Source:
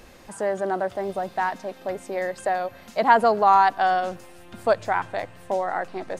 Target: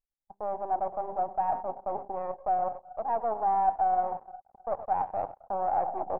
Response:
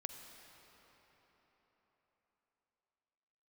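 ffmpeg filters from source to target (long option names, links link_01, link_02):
-filter_complex "[0:a]asplit=2[link_01][link_02];[link_02]adelay=116.6,volume=-18dB,highshelf=frequency=4000:gain=-2.62[link_03];[link_01][link_03]amix=inputs=2:normalize=0,agate=range=-33dB:threshold=-38dB:ratio=16:detection=peak,areverse,acompressor=threshold=-32dB:ratio=6,areverse,bandreject=frequency=50:width_type=h:width=6,bandreject=frequency=100:width_type=h:width=6,bandreject=frequency=150:width_type=h:width=6,bandreject=frequency=200:width_type=h:width=6,bandreject=frequency=250:width_type=h:width=6,bandreject=frequency=300:width_type=h:width=6,bandreject=frequency=350:width_type=h:width=6,bandreject=frequency=400:width_type=h:width=6,bandreject=frequency=450:width_type=h:width=6,asplit=2[link_04][link_05];[1:a]atrim=start_sample=2205,highshelf=frequency=2000:gain=-10.5[link_06];[link_05][link_06]afir=irnorm=-1:irlink=0,volume=-1dB[link_07];[link_04][link_07]amix=inputs=2:normalize=0,anlmdn=0.631,aeval=exprs='max(val(0),0)':channel_layout=same,lowpass=frequency=800:width_type=q:width=6.6,lowshelf=frequency=390:gain=-5,volume=-1.5dB"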